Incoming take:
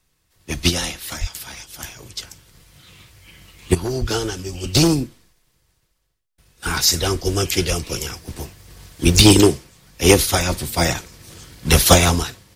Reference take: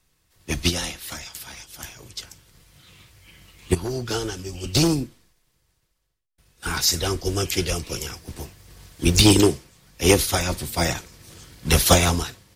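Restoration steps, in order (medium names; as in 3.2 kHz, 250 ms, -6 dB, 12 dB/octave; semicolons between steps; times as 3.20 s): 0.63 s: gain correction -4 dB; 1.20–1.32 s: high-pass 140 Hz 24 dB/octave; 4.00–4.12 s: high-pass 140 Hz 24 dB/octave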